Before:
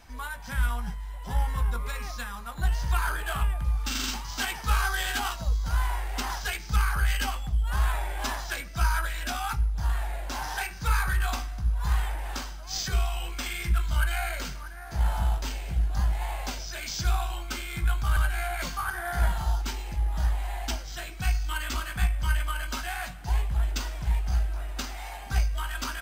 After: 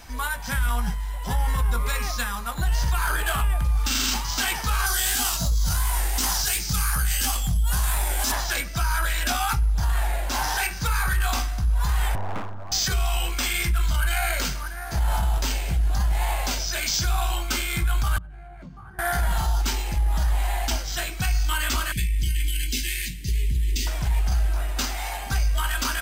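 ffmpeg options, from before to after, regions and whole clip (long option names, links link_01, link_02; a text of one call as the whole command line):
ffmpeg -i in.wav -filter_complex "[0:a]asettb=1/sr,asplit=3[link_01][link_02][link_03];[link_01]atrim=end=4.864[link_04];[link_02]atrim=start=4.86:end=8.32,asetpts=PTS-STARTPTS,afade=type=in:duration=0.004:curve=qsin,afade=type=out:start_time=3.456:duration=0.004:curve=qsin,bass=frequency=250:gain=10,treble=frequency=4000:gain=12,flanger=delay=16.5:depth=7.6:speed=2.8,highpass=frequency=130:poles=1[link_05];[link_03]atrim=start=8.316[link_06];[link_04][link_05]acrossfade=duration=0.004:curve1=hsin:curve2=qsin[link_07];[link_07][link_06]acrossfade=duration=0.004:curve1=qsin:curve2=hsin,asettb=1/sr,asplit=3[link_08][link_09][link_10];[link_08]atrim=end=12.154[link_11];[link_09]atrim=start=12.15:end=12.72,asetpts=PTS-STARTPTS,afade=type=in:duration=0.004:curve=qsin,afade=type=out:start_time=0.566:duration=0.004:curve=qsin,lowpass=frequency=1300:width=0.5412,lowpass=frequency=1300:width=1.3066,equalizer=frequency=470:width_type=o:width=0.97:gain=4,aeval=exprs='abs(val(0))':channel_layout=same[link_12];[link_10]atrim=start=12.716[link_13];[link_11][link_12]acrossfade=duration=0.004:curve1=hsin:curve2=qsin[link_14];[link_14][link_13]acrossfade=duration=0.004:curve1=qsin:curve2=hsin,asettb=1/sr,asplit=3[link_15][link_16][link_17];[link_15]atrim=end=18.184[link_18];[link_16]atrim=start=18.18:end=18.99,asetpts=PTS-STARTPTS,afade=type=in:duration=0.004:curve=qsin,afade=type=out:start_time=0.806:duration=0.004:curve=qsin,bandpass=frequency=160:width_type=q:width=1.9,acompressor=threshold=-45dB:ratio=4:attack=3.2:release=140:knee=1:detection=peak[link_19];[link_17]atrim=start=18.986[link_20];[link_18][link_19]acrossfade=duration=0.004:curve1=hsin:curve2=qsin[link_21];[link_21][link_20]acrossfade=duration=0.004:curve1=qsin:curve2=hsin,asettb=1/sr,asplit=3[link_22][link_23][link_24];[link_22]atrim=end=21.924[link_25];[link_23]atrim=start=21.92:end=23.87,asetpts=PTS-STARTPTS,afade=type=in:duration=0.004:curve=qsin,afade=type=out:start_time=1.946:duration=0.004:curve=qsin,acompressor=threshold=-26dB:ratio=16:attack=3.2:release=140:knee=1:detection=peak,asuperstop=centerf=920:order=12:qfactor=0.62[link_26];[link_24]atrim=start=23.866[link_27];[link_25][link_26]acrossfade=duration=0.004:curve1=hsin:curve2=qsin[link_28];[link_28][link_27]acrossfade=duration=0.004:curve1=qsin:curve2=hsin,alimiter=limit=-23.5dB:level=0:latency=1:release=21,highshelf=frequency=4500:gain=5.5,volume=7.5dB" out.wav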